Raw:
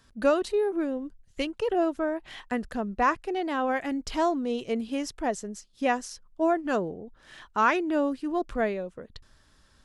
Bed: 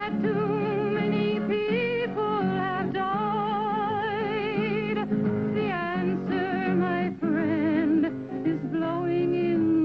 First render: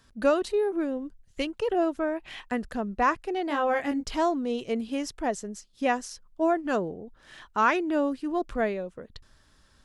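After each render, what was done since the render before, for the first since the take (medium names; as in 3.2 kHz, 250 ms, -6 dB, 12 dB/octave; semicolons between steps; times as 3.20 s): 2.00–2.48 s: peaking EQ 2.5 kHz +8 dB 0.31 oct; 3.48–4.05 s: doubling 21 ms -3.5 dB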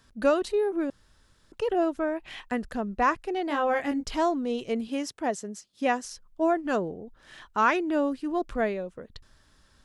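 0.90–1.52 s: room tone; 4.87–6.05 s: high-pass 130 Hz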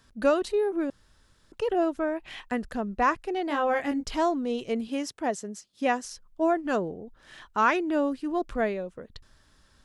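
no audible change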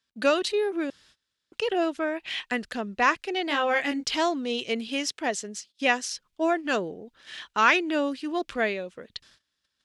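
gate -55 dBFS, range -23 dB; frequency weighting D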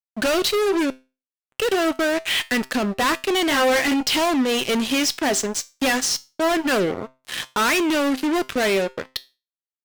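fuzz box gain 36 dB, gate -41 dBFS; feedback comb 130 Hz, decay 0.29 s, harmonics all, mix 50%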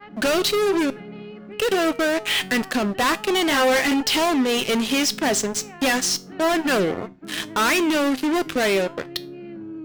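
add bed -12.5 dB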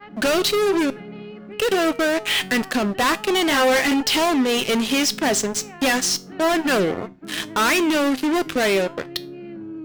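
trim +1 dB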